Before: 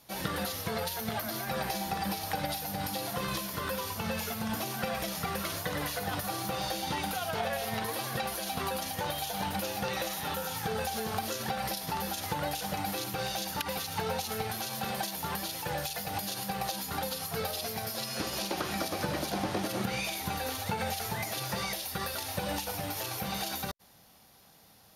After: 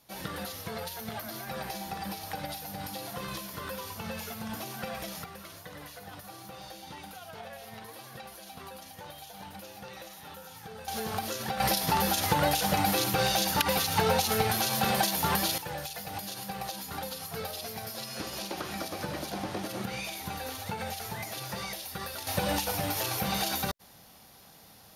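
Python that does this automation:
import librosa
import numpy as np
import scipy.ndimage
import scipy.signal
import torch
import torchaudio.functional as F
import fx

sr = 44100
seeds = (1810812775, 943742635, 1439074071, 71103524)

y = fx.gain(x, sr, db=fx.steps((0.0, -4.0), (5.24, -11.5), (10.88, 0.0), (11.6, 7.5), (15.58, -3.0), (22.27, 4.5)))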